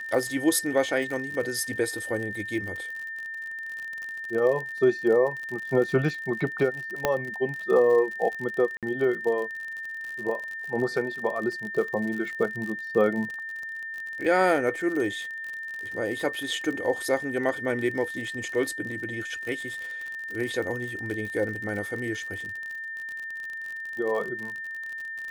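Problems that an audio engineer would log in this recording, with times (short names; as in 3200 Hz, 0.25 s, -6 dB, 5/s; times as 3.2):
crackle 55/s -32 dBFS
tone 1800 Hz -33 dBFS
7.05 pop -8 dBFS
8.77–8.83 gap 57 ms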